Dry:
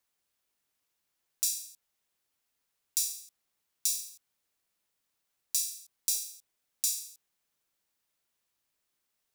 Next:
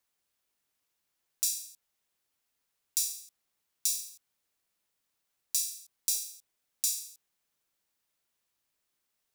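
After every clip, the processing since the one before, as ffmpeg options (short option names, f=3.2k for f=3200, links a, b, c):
-af anull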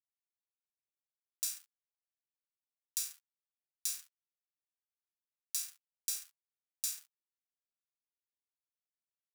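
-af "aeval=exprs='sgn(val(0))*max(abs(val(0))-0.0141,0)':c=same,highpass=f=1.1k:w=0.5412,highpass=f=1.1k:w=1.3066,volume=-5dB"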